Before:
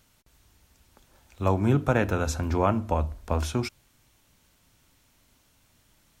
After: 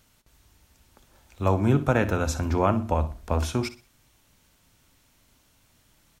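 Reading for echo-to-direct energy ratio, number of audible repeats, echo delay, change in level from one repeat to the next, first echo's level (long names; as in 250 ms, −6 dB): −14.5 dB, 2, 61 ms, −10.5 dB, −15.0 dB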